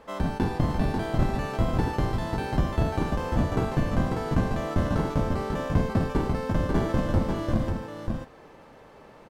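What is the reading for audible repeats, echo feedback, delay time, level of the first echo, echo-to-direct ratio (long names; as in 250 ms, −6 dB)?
1, repeats not evenly spaced, 543 ms, −4.5 dB, −4.5 dB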